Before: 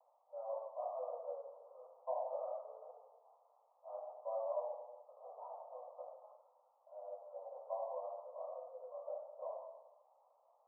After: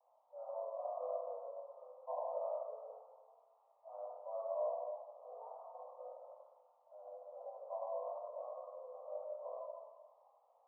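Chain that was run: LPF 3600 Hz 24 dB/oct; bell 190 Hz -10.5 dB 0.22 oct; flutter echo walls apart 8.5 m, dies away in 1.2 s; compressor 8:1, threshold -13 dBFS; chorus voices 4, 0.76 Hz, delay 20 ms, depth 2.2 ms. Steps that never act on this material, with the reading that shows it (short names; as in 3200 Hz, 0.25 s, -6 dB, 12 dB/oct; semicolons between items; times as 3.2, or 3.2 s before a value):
LPF 3600 Hz: input band ends at 1300 Hz; bell 190 Hz: input band starts at 430 Hz; compressor, threshold -13 dBFS: input peak -27.0 dBFS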